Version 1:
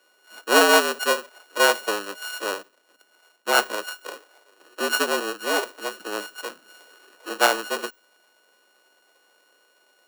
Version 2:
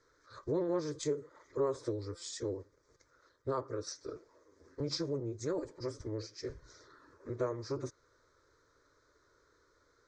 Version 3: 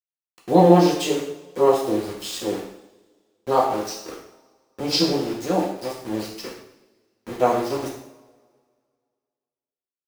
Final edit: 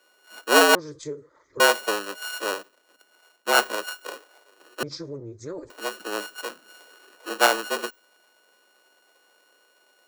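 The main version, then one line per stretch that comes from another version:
1
0:00.75–0:01.60: punch in from 2
0:04.83–0:05.70: punch in from 2
not used: 3

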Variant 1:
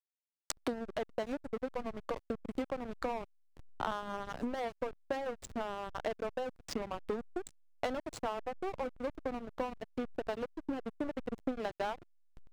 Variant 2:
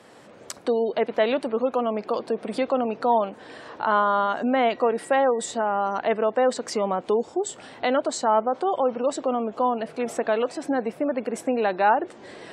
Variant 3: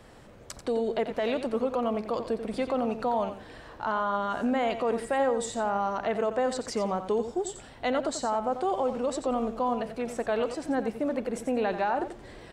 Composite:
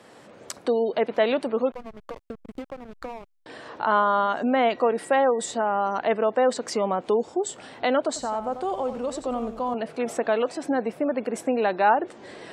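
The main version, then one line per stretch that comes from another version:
2
0:01.72–0:03.46: punch in from 1
0:08.16–0:09.74: punch in from 3

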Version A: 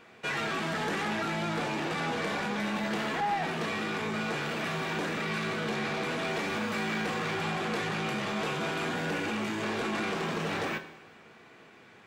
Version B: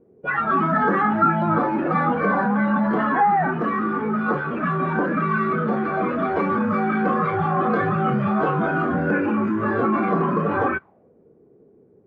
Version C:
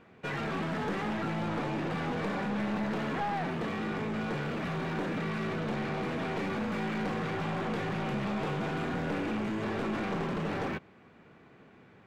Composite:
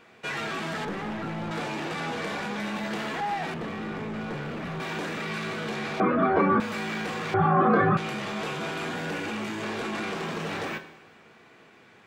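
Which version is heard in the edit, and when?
A
0:00.85–0:01.51: punch in from C
0:03.54–0:04.80: punch in from C
0:06.00–0:06.60: punch in from B
0:07.34–0:07.97: punch in from B

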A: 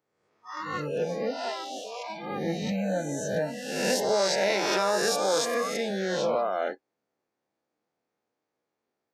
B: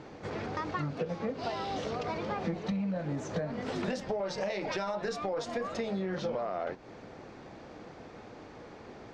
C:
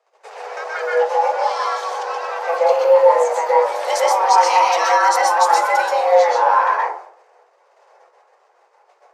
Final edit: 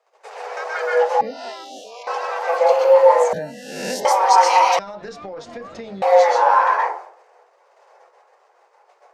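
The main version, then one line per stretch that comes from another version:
C
0:01.21–0:02.07: punch in from A
0:03.33–0:04.05: punch in from A
0:04.79–0:06.02: punch in from B

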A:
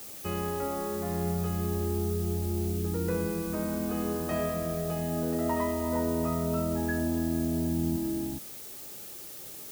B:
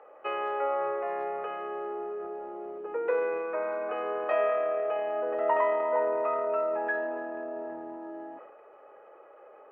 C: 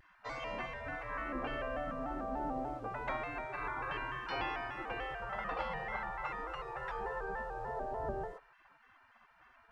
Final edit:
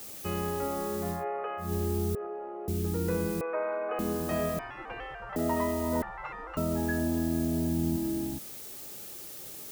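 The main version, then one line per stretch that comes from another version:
A
0:01.17–0:01.65: punch in from B, crossfade 0.16 s
0:02.15–0:02.68: punch in from B
0:03.41–0:03.99: punch in from B
0:04.59–0:05.36: punch in from C
0:06.02–0:06.57: punch in from C

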